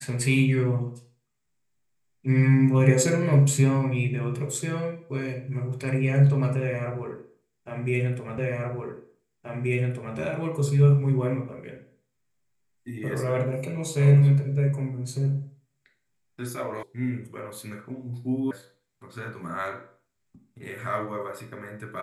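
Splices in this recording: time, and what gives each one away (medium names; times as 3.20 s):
8.38 s: repeat of the last 1.78 s
16.83 s: sound stops dead
18.51 s: sound stops dead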